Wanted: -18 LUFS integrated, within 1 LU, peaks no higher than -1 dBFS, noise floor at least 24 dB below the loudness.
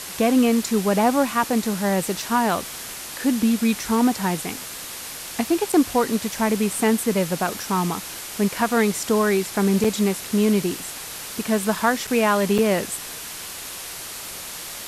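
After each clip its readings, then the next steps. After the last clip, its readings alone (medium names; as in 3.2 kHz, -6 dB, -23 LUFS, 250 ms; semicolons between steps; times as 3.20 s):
dropouts 4; longest dropout 5.3 ms; noise floor -35 dBFS; noise floor target -47 dBFS; loudness -22.5 LUFS; peak level -5.5 dBFS; loudness target -18.0 LUFS
-> interpolate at 5.72/9.84/12.07/12.58 s, 5.3 ms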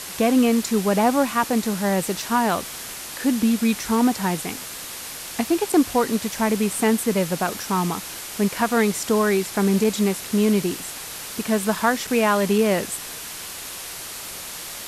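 dropouts 0; noise floor -35 dBFS; noise floor target -47 dBFS
-> noise reduction 12 dB, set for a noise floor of -35 dBFS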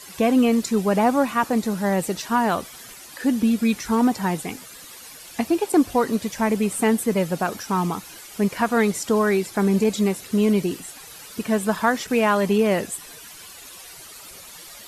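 noise floor -42 dBFS; noise floor target -46 dBFS
-> noise reduction 6 dB, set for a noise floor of -42 dBFS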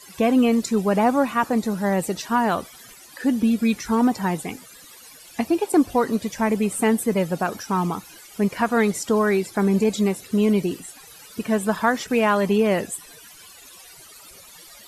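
noise floor -46 dBFS; loudness -22.0 LUFS; peak level -6.0 dBFS; loudness target -18.0 LUFS
-> trim +4 dB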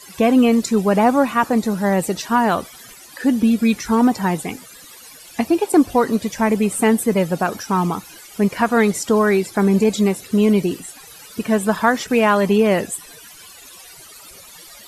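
loudness -18.0 LUFS; peak level -2.0 dBFS; noise floor -42 dBFS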